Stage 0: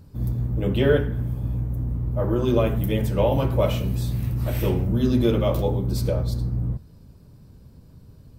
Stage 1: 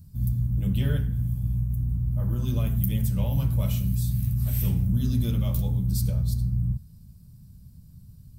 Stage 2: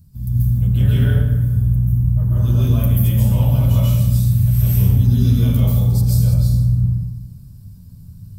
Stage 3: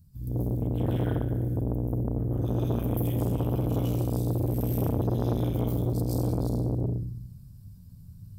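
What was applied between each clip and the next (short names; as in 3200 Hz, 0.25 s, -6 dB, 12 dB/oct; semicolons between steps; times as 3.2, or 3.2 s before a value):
EQ curve 190 Hz 0 dB, 360 Hz -21 dB, 2600 Hz -10 dB, 11000 Hz +6 dB
plate-style reverb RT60 1.3 s, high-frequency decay 0.6×, pre-delay 0.12 s, DRR -8 dB
core saturation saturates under 480 Hz; gain -8.5 dB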